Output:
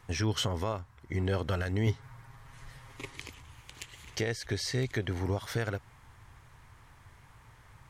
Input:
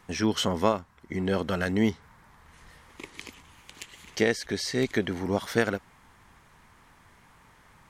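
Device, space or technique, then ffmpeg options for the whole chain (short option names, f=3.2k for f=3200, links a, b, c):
car stereo with a boomy subwoofer: -filter_complex "[0:a]lowshelf=f=150:t=q:w=3:g=6,alimiter=limit=-18.5dB:level=0:latency=1:release=179,asettb=1/sr,asplit=3[a][b][c];[a]atrim=end=1.864[d];[b]atrim=start=1.86:end=3.16,asetpts=PTS-STARTPTS,afade=t=in:d=0.004:c=qsin,afade=t=out:st=1.296:d=0.004:c=qsin,aecho=1:1:7.4:0.83,atrim=end_sample=57330[e];[c]atrim=start=3.156[f];[d][e]acrossfade=d=0.004:c1=hsin:c2=qsin[g];[g][f]acrossfade=d=0.004:c1=qsin:c2=hsin,volume=-2dB"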